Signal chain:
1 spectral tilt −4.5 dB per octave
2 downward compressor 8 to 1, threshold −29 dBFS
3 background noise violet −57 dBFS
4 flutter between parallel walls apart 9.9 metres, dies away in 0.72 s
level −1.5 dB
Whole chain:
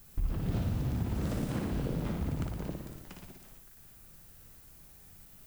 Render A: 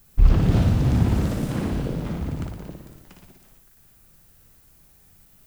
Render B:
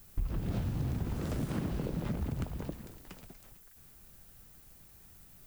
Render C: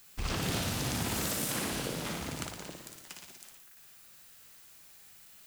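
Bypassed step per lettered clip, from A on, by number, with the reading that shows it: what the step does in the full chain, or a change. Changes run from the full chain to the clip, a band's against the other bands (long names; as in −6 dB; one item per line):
2, change in crest factor +4.5 dB
4, echo-to-direct ratio −3.0 dB to none audible
1, 125 Hz band −14.0 dB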